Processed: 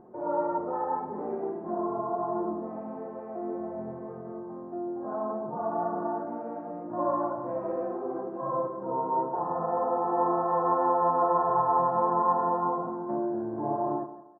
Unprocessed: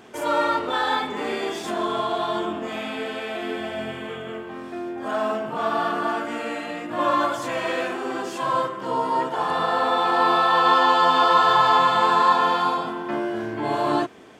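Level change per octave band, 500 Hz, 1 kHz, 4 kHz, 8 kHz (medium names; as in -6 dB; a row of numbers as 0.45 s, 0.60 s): -4.0 dB, -7.5 dB, under -40 dB, under -35 dB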